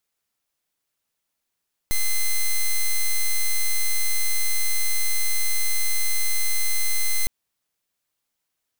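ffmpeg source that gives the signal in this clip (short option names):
-f lavfi -i "aevalsrc='0.112*(2*lt(mod(2060*t,1),0.05)-1)':d=5.36:s=44100"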